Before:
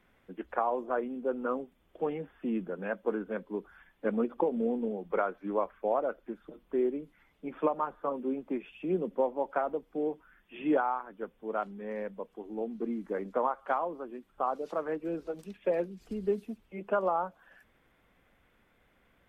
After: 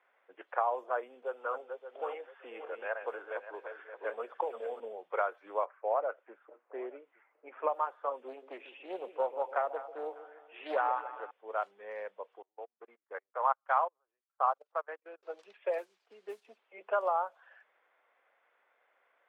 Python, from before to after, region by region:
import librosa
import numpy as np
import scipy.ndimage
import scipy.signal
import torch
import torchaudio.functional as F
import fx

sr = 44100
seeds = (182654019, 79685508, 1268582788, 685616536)

y = fx.chain(x, sr, fx.reverse_delay_fb(ms=287, feedback_pct=44, wet_db=-7),
    fx.highpass(hz=350.0, slope=12),
    fx.band_squash(depth_pct=40), at=(1.22, 4.8))
y = fx.chain(y, sr, fx.env_lowpass(base_hz=1600.0, full_db=-26.5),
    fx.lowpass(hz=2700.0, slope=24),
    fx.echo_single(ms=864, db=-22.5), at=(5.65, 7.69))
y = fx.chain(y, sr, fx.echo_split(split_hz=790.0, low_ms=144, high_ms=200, feedback_pct=52, wet_db=-12),
    fx.doppler_dist(depth_ms=0.29), at=(8.28, 11.31))
y = fx.chain(y, sr, fx.level_steps(step_db=17),
    fx.peak_eq(hz=1400.0, db=11.5, octaves=2.7),
    fx.upward_expand(threshold_db=-45.0, expansion=2.5), at=(12.42, 15.23))
y = fx.chain(y, sr, fx.dynamic_eq(hz=520.0, q=2.0, threshold_db=-44.0, ratio=4.0, max_db=-6),
    fx.quant_dither(seeds[0], bits=10, dither='none'),
    fx.upward_expand(threshold_db=-50.0, expansion=1.5), at=(15.78, 16.45))
y = fx.env_lowpass(y, sr, base_hz=2000.0, full_db=-26.5)
y = scipy.signal.sosfilt(scipy.signal.butter(4, 540.0, 'highpass', fs=sr, output='sos'), y)